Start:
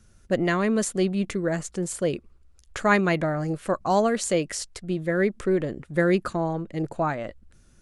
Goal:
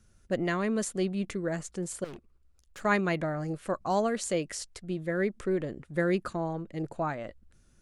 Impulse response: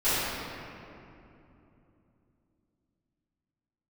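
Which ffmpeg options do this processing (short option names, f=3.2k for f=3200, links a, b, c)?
-filter_complex "[0:a]asettb=1/sr,asplit=3[a][b][c];[a]atrim=end=2.044[d];[b]atrim=start=2.04:end=2.85,asetpts=PTS-STARTPTS,afade=t=in:d=0.004:c=qsin,afade=t=out:st=0.806:d=0.004:c=qsin,aeval=exprs='(tanh(56.2*val(0)+0.6)-tanh(0.6))/56.2':c=same[e];[c]atrim=start=2.846[f];[d][e]acrossfade=d=0.004:c1=hsin:c2=qsin[g];[g][f]acrossfade=d=0.004:c1=qsin:c2=hsin,volume=-6dB"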